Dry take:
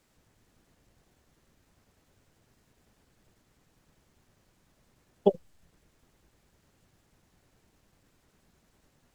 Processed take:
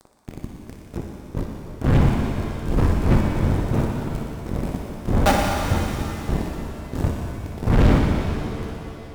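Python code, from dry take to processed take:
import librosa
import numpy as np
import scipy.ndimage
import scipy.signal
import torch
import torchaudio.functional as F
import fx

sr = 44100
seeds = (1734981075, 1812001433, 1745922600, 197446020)

p1 = fx.cycle_switch(x, sr, every=2, mode='muted')
p2 = fx.dmg_wind(p1, sr, seeds[0], corner_hz=110.0, level_db=-43.0)
p3 = fx.formant_shift(p2, sr, semitones=2)
p4 = fx.fuzz(p3, sr, gain_db=44.0, gate_db=-46.0)
p5 = p4 + fx.echo_thinned(p4, sr, ms=60, feedback_pct=85, hz=550.0, wet_db=-8.5, dry=0)
y = fx.rev_shimmer(p5, sr, seeds[1], rt60_s=2.8, semitones=7, shimmer_db=-8, drr_db=1.5)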